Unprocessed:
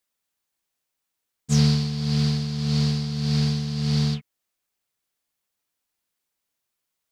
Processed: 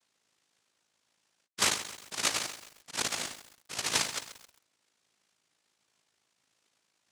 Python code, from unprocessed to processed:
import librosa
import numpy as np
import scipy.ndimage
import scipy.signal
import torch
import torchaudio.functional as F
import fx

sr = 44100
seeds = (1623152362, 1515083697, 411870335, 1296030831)

y = fx.spec_ripple(x, sr, per_octave=0.78, drift_hz=-1.3, depth_db=23)
y = fx.spec_gate(y, sr, threshold_db=-20, keep='strong')
y = scipy.signal.sosfilt(scipy.signal.butter(8, 670.0, 'highpass', fs=sr, output='sos'), y)
y = fx.peak_eq(y, sr, hz=2300.0, db=9.0, octaves=1.5)
y = y + 1.0 * np.pad(y, (int(3.3 * sr / 1000.0), 0))[:len(y)]
y = y * np.sin(2.0 * np.pi * 27.0 * np.arange(len(y)) / sr)
y = fx.noise_vocoder(y, sr, seeds[0], bands=1)
y = fx.echo_crushed(y, sr, ms=133, feedback_pct=55, bits=7, wet_db=-11.5)